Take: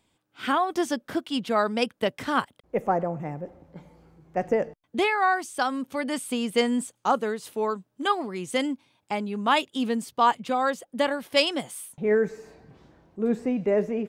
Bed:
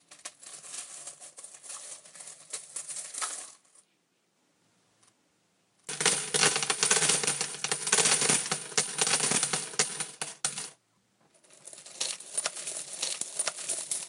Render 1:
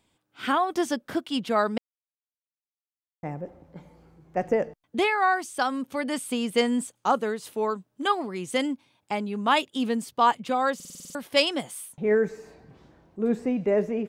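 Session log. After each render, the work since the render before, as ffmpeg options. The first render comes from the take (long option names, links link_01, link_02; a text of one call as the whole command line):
ffmpeg -i in.wav -filter_complex "[0:a]asplit=11[link_01][link_02][link_03][link_04][link_05][link_06][link_07][link_08][link_09][link_10][link_11];[link_01]atrim=end=1.78,asetpts=PTS-STARTPTS,afade=type=out:start_time=1.776:duration=0.004:curve=hsin[link_12];[link_02]atrim=start=1.78:end=3.23,asetpts=PTS-STARTPTS,volume=0[link_13];[link_03]atrim=start=3.23:end=10.802,asetpts=PTS-STARTPTS,afade=type=in:duration=0.004:curve=hsin[link_14];[link_04]atrim=start=10.748:end=10.802[link_15];[link_05]atrim=start=10.748:end=10.802[link_16];[link_06]atrim=start=10.748:end=10.802[link_17];[link_07]atrim=start=10.748:end=10.802[link_18];[link_08]atrim=start=10.748:end=10.802[link_19];[link_09]atrim=start=10.748:end=10.802[link_20];[link_10]atrim=start=10.748:end=10.802[link_21];[link_11]atrim=start=11.148[link_22];[link_12][link_13][link_14]concat=n=3:v=0:a=1[link_23];[link_23][link_15]acrossfade=duration=0.004:curve1=hsin:curve2=hsin[link_24];[link_24][link_16]acrossfade=duration=0.004:curve1=hsin:curve2=hsin[link_25];[link_25][link_17]acrossfade=duration=0.004:curve1=hsin:curve2=hsin[link_26];[link_26][link_18]acrossfade=duration=0.004:curve1=hsin:curve2=hsin[link_27];[link_27][link_19]acrossfade=duration=0.004:curve1=hsin:curve2=hsin[link_28];[link_28][link_20]acrossfade=duration=0.004:curve1=hsin:curve2=hsin[link_29];[link_29][link_21]acrossfade=duration=0.004:curve1=hsin:curve2=hsin[link_30];[link_30][link_22]acrossfade=duration=0.004:curve1=hsin:curve2=hsin" out.wav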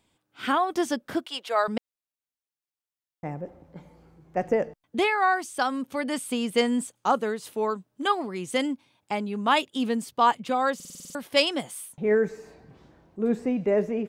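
ffmpeg -i in.wav -filter_complex "[0:a]asettb=1/sr,asplit=3[link_01][link_02][link_03];[link_01]atrim=end=1.264[link_04];[link_02]atrim=start=1.26:end=1.68,asetpts=PTS-STARTPTS,afade=type=in:duration=0.004:curve=qsin,afade=type=out:start_time=0.416:duration=0.004:curve=qsin,highpass=frequency=470:width=0.5412,highpass=frequency=470:width=1.3066[link_05];[link_03]atrim=start=1.676[link_06];[link_04][link_05]acrossfade=duration=0.004:curve1=hsin:curve2=qsin[link_07];[link_07][link_06]acrossfade=duration=0.004:curve1=qsin:curve2=hsin" out.wav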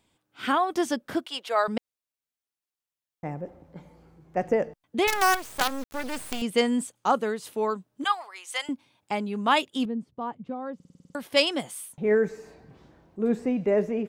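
ffmpeg -i in.wav -filter_complex "[0:a]asettb=1/sr,asplit=3[link_01][link_02][link_03];[link_01]atrim=end=5.074[link_04];[link_02]atrim=start=5.07:end=6.42,asetpts=PTS-STARTPTS,afade=type=in:duration=0.004:curve=qsin,afade=type=out:start_time=1.346:duration=0.004:curve=qsin,acrusher=bits=4:dc=4:mix=0:aa=0.000001[link_05];[link_03]atrim=start=6.416[link_06];[link_04][link_05]acrossfade=duration=0.004:curve1=hsin:curve2=qsin[link_07];[link_07][link_06]acrossfade=duration=0.004:curve1=qsin:curve2=hsin,asettb=1/sr,asplit=3[link_08][link_09][link_10];[link_08]atrim=end=8.044[link_11];[link_09]atrim=start=8.04:end=8.69,asetpts=PTS-STARTPTS,afade=type=in:duration=0.004:curve=qsin,afade=type=out:start_time=0.646:duration=0.004:curve=qsin,highpass=frequency=780:width=0.5412,highpass=frequency=780:width=1.3066[link_12];[link_10]atrim=start=8.686[link_13];[link_11][link_12]acrossfade=duration=0.004:curve1=hsin:curve2=qsin[link_14];[link_14][link_13]acrossfade=duration=0.004:curve1=qsin:curve2=hsin,asettb=1/sr,asplit=3[link_15][link_16][link_17];[link_15]atrim=end=9.854[link_18];[link_16]atrim=start=9.85:end=11.15,asetpts=PTS-STARTPTS,afade=type=in:duration=0.004:curve=qsin,afade=type=out:start_time=1.296:duration=0.004:curve=qsin,bandpass=frequency=110:width_type=q:width=0.57[link_19];[link_17]atrim=start=11.146[link_20];[link_18][link_19]acrossfade=duration=0.004:curve1=hsin:curve2=qsin[link_21];[link_21][link_20]acrossfade=duration=0.004:curve1=qsin:curve2=hsin" out.wav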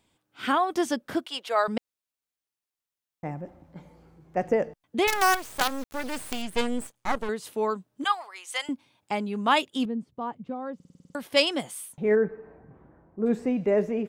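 ffmpeg -i in.wav -filter_complex "[0:a]asettb=1/sr,asplit=3[link_01][link_02][link_03];[link_01]atrim=end=3.314[link_04];[link_02]atrim=start=3.31:end=3.77,asetpts=PTS-STARTPTS,afade=type=in:duration=0.004:curve=qsin,afade=type=out:start_time=0.456:duration=0.004:curve=qsin,equalizer=frequency=460:width=5.2:gain=-13.5[link_05];[link_03]atrim=start=3.766[link_06];[link_04][link_05]acrossfade=duration=0.004:curve1=hsin:curve2=qsin[link_07];[link_07][link_06]acrossfade=duration=0.004:curve1=qsin:curve2=hsin,asettb=1/sr,asplit=3[link_08][link_09][link_10];[link_08]atrim=end=6.414[link_11];[link_09]atrim=start=6.41:end=7.29,asetpts=PTS-STARTPTS,afade=type=in:duration=0.004:curve=qsin,afade=type=out:start_time=0.876:duration=0.004:curve=qsin,aeval=exprs='max(val(0),0)':channel_layout=same[link_12];[link_10]atrim=start=7.286[link_13];[link_11][link_12]acrossfade=duration=0.004:curve1=hsin:curve2=qsin[link_14];[link_14][link_13]acrossfade=duration=0.004:curve1=qsin:curve2=hsin,asplit=3[link_15][link_16][link_17];[link_15]afade=type=out:start_time=12.15:duration=0.02[link_18];[link_16]lowpass=frequency=1700:width=0.5412,lowpass=frequency=1700:width=1.3066,afade=type=in:start_time=12.15:duration=0.02,afade=type=out:start_time=13.25:duration=0.02[link_19];[link_17]afade=type=in:start_time=13.25:duration=0.02[link_20];[link_18][link_19][link_20]amix=inputs=3:normalize=0" out.wav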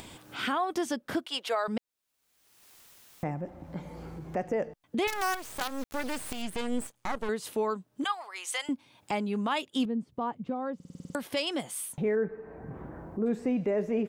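ffmpeg -i in.wav -af "acompressor=mode=upward:threshold=-29dB:ratio=2.5,alimiter=limit=-20dB:level=0:latency=1:release=162" out.wav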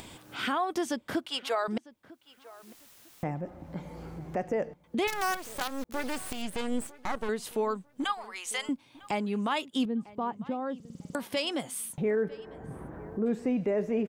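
ffmpeg -i in.wav -filter_complex "[0:a]asplit=2[link_01][link_02];[link_02]adelay=950,lowpass=frequency=3000:poles=1,volume=-20.5dB,asplit=2[link_03][link_04];[link_04]adelay=950,lowpass=frequency=3000:poles=1,volume=0.26[link_05];[link_01][link_03][link_05]amix=inputs=3:normalize=0" out.wav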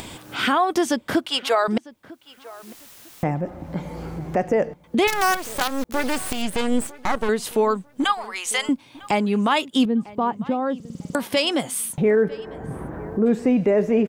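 ffmpeg -i in.wav -af "volume=10dB" out.wav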